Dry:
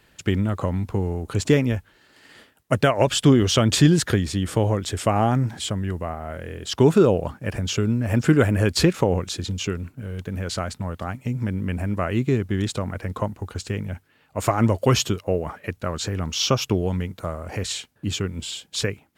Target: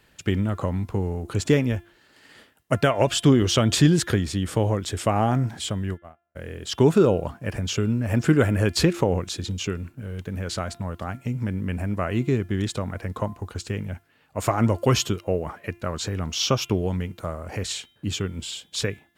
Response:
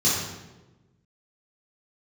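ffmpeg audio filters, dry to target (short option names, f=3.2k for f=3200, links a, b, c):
-filter_complex "[0:a]asplit=3[a][b][c];[a]afade=t=out:st=5.93:d=0.02[d];[b]agate=range=-53dB:threshold=-24dB:ratio=16:detection=peak,afade=t=in:st=5.93:d=0.02,afade=t=out:st=6.35:d=0.02[e];[c]afade=t=in:st=6.35:d=0.02[f];[d][e][f]amix=inputs=3:normalize=0,bandreject=f=344.7:t=h:w=4,bandreject=f=689.4:t=h:w=4,bandreject=f=1.0341k:t=h:w=4,bandreject=f=1.3788k:t=h:w=4,bandreject=f=1.7235k:t=h:w=4,bandreject=f=2.0682k:t=h:w=4,bandreject=f=2.4129k:t=h:w=4,bandreject=f=2.7576k:t=h:w=4,bandreject=f=3.1023k:t=h:w=4,bandreject=f=3.447k:t=h:w=4,bandreject=f=3.7917k:t=h:w=4,volume=-1.5dB"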